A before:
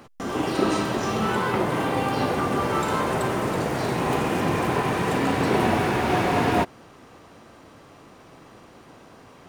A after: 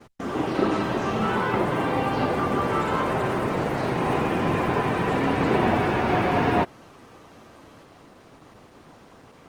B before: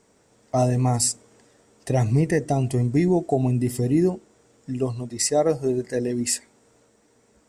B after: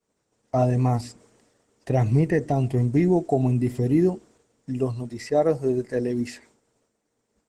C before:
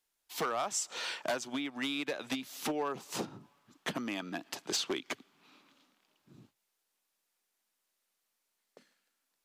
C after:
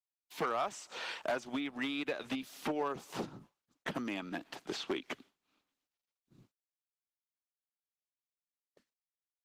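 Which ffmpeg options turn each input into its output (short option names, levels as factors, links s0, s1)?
-filter_complex "[0:a]acrossover=split=3500[s0][s1];[s1]acompressor=threshold=0.00355:ratio=4:attack=1:release=60[s2];[s0][s2]amix=inputs=2:normalize=0,agate=range=0.0224:threshold=0.00282:ratio=3:detection=peak" -ar 48000 -c:a libopus -b:a 16k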